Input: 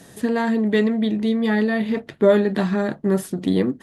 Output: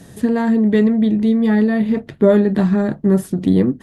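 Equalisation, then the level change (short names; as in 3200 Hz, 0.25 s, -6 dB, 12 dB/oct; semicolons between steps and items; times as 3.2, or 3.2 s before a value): dynamic EQ 3500 Hz, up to -4 dB, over -39 dBFS, Q 0.73; low shelf 220 Hz +12 dB; 0.0 dB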